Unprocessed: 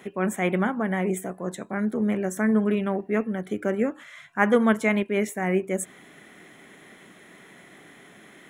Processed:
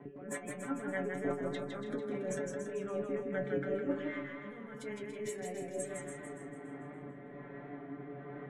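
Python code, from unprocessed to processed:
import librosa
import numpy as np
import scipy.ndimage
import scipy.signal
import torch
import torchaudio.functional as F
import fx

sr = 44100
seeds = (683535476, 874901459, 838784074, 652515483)

p1 = fx.env_lowpass(x, sr, base_hz=930.0, full_db=-20.5)
p2 = fx.lowpass(p1, sr, hz=1900.0, slope=6)
p3 = fx.over_compress(p2, sr, threshold_db=-33.0, ratio=-1.0)
p4 = fx.auto_swell(p3, sr, attack_ms=124.0)
p5 = fx.rotary_switch(p4, sr, hz=5.0, then_hz=1.2, switch_at_s=5.74)
p6 = fx.stiff_resonator(p5, sr, f0_hz=140.0, decay_s=0.24, stiffness=0.002)
p7 = p6 + fx.echo_feedback(p6, sr, ms=285, feedback_pct=31, wet_db=-9.0, dry=0)
p8 = fx.echo_warbled(p7, sr, ms=161, feedback_pct=32, rate_hz=2.8, cents=74, wet_db=-4.5)
y = F.gain(torch.from_numpy(p8), 9.0).numpy()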